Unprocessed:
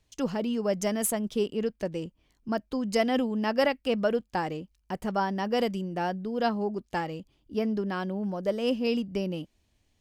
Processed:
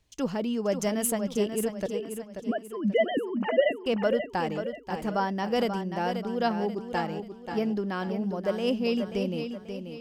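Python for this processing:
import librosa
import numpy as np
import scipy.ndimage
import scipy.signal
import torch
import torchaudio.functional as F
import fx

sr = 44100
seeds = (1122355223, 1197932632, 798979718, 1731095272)

y = fx.sine_speech(x, sr, at=(1.86, 3.86))
y = fx.echo_feedback(y, sr, ms=535, feedback_pct=40, wet_db=-8)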